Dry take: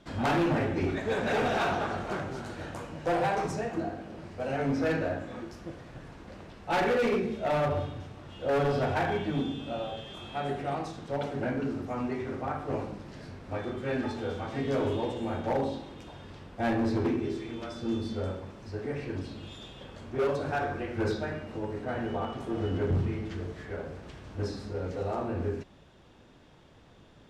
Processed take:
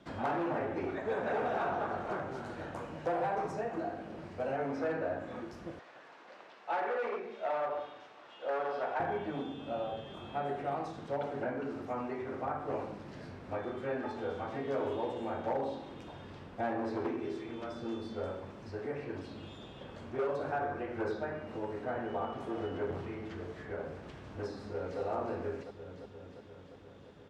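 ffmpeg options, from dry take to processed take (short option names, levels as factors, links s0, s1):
-filter_complex "[0:a]asettb=1/sr,asplit=3[s0][s1][s2];[s0]atrim=end=5.794[s3];[s1]atrim=start=5.79:end=9,asetpts=PTS-STARTPTS,afade=t=in:d=0.004:c=qsin,afade=t=out:st=3.206:d=0.004:c=qsin,highpass=660,lowpass=6500[s4];[s2]atrim=start=8.996[s5];[s3][s4]acrossfade=d=0.004:c1=hsin:c2=qsin[s6];[s6][s5]acrossfade=d=0.004:c1=qsin:c2=hsin,asplit=2[s7][s8];[s8]afade=t=in:st=24.57:d=0.01,afade=t=out:st=25:d=0.01,aecho=0:1:350|700|1050|1400|1750|2100|2450|2800|3150|3500|3850:0.501187|0.350831|0.245582|0.171907|0.120335|0.0842345|0.0589642|0.0412749|0.0288924|0.0202247|0.0141573[s9];[s7][s9]amix=inputs=2:normalize=0,highpass=f=100:p=1,highshelf=f=3800:g=-7.5,acrossover=split=400|1600[s10][s11][s12];[s10]acompressor=threshold=0.00631:ratio=4[s13];[s11]acompressor=threshold=0.0282:ratio=4[s14];[s12]acompressor=threshold=0.00178:ratio=4[s15];[s13][s14][s15]amix=inputs=3:normalize=0"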